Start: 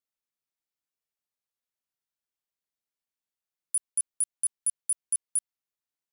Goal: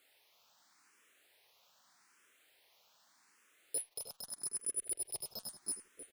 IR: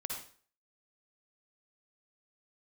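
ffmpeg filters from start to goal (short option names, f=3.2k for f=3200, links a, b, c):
-filter_complex "[0:a]asplit=2[a][b];[b]aecho=0:1:329:0.141[c];[a][c]amix=inputs=2:normalize=0,acompressor=threshold=-29dB:ratio=6,alimiter=level_in=7.5dB:limit=-24dB:level=0:latency=1:release=156,volume=-7.5dB,flanger=delay=0.7:depth=9.7:regen=-72:speed=0.41:shape=triangular,asettb=1/sr,asplit=3[d][e][f];[d]atrim=end=3.884[g];[e]atrim=start=3.88:end=5.21,asetpts=PTS-STARTPTS,afade=t=in:d=0.004:c=qsin,afade=t=out:st=1.326:d=0.004:c=qsin,tremolo=f=22:d=0.889[h];[f]atrim=start=5.206[i];[g][h]acrossfade=d=0.004:c1=hsin:c2=qsin[j];[j][i]acrossfade=d=0.004:c1=qsin:c2=hsin,asplit=2[k][l];[l]highpass=f=720:p=1,volume=30dB,asoftclip=type=tanh:threshold=-31dB[m];[k][m]amix=inputs=2:normalize=0,lowpass=f=3.2k:p=1,volume=-6dB,asplit=2[n][o];[o]adelay=310,lowpass=f=2.9k:p=1,volume=-5.5dB,asplit=2[p][q];[q]adelay=310,lowpass=f=2.9k:p=1,volume=0.21,asplit=2[r][s];[s]adelay=310,lowpass=f=2.9k:p=1,volume=0.21[t];[p][r][t]amix=inputs=3:normalize=0[u];[n][u]amix=inputs=2:normalize=0,asplit=2[v][w];[w]afreqshift=0.82[x];[v][x]amix=inputs=2:normalize=1,volume=12.5dB"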